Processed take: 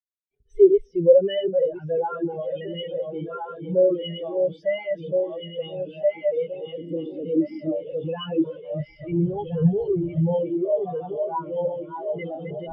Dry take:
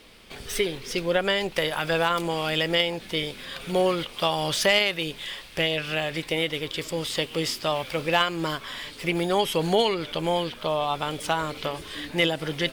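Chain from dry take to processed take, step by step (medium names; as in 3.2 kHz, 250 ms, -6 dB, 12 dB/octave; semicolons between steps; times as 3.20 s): backward echo that repeats 686 ms, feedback 76%, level -3.5 dB; 6.78–7.83 s: peaking EQ 250 Hz +11.5 dB 0.78 oct; fuzz box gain 36 dB, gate -42 dBFS; 8.79–10.34 s: resonant low shelf 160 Hz +7.5 dB, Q 1.5; spectral contrast expander 4:1; trim +1 dB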